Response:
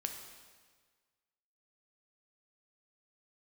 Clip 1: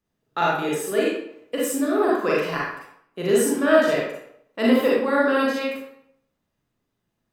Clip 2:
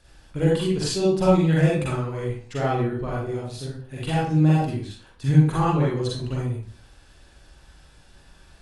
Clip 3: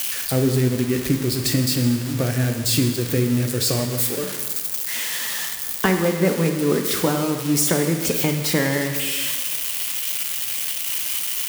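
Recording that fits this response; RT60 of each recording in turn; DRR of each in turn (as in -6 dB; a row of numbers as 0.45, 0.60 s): 3; 0.70, 0.50, 1.6 s; -5.5, -6.0, 4.0 dB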